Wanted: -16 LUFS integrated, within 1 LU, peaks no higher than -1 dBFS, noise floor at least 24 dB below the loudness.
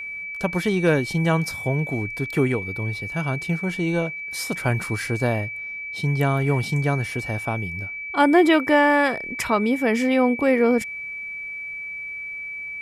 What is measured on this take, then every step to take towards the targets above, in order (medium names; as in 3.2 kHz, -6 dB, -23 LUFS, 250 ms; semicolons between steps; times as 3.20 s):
steady tone 2.3 kHz; tone level -30 dBFS; loudness -22.5 LUFS; peak level -4.5 dBFS; loudness target -16.0 LUFS
-> band-stop 2.3 kHz, Q 30; trim +6.5 dB; peak limiter -1 dBFS